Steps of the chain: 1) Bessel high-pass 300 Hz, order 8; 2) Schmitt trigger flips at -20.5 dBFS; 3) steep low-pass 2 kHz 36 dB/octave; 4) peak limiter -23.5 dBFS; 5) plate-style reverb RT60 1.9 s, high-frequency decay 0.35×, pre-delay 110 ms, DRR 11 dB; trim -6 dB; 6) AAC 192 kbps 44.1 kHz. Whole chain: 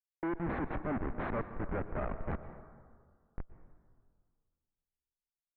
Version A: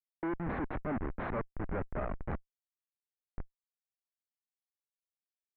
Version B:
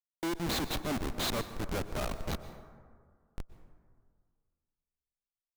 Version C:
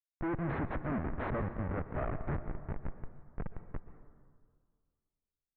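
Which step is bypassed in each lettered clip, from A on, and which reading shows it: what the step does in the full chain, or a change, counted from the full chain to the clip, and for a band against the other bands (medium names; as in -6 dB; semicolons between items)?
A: 5, crest factor change -3.0 dB; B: 3, 2 kHz band +2.0 dB; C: 1, 125 Hz band +4.0 dB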